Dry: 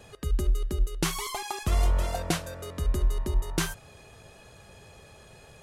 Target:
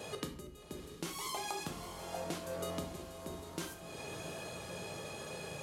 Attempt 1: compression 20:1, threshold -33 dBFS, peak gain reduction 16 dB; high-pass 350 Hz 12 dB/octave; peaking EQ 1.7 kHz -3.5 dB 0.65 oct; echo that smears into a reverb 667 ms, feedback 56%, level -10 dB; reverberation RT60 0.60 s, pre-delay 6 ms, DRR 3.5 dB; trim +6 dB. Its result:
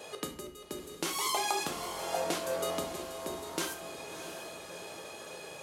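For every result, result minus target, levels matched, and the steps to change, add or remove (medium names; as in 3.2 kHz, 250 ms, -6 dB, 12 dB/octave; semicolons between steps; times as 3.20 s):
125 Hz band -10.5 dB; compression: peak gain reduction -9 dB
change: high-pass 160 Hz 12 dB/octave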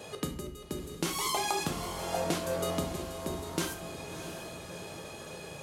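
compression: peak gain reduction -9 dB
change: compression 20:1, threshold -42.5 dBFS, peak gain reduction 25 dB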